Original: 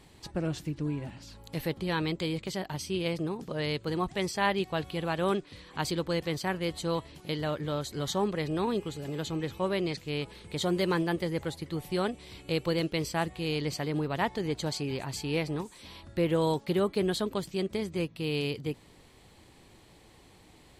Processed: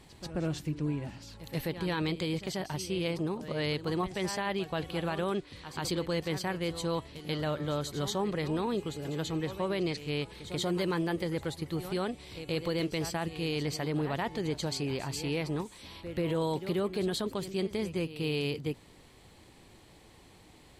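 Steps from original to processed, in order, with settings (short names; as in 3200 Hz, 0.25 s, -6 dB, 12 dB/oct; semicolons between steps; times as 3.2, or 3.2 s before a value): pre-echo 0.137 s -14 dB; limiter -22.5 dBFS, peak gain reduction 9.5 dB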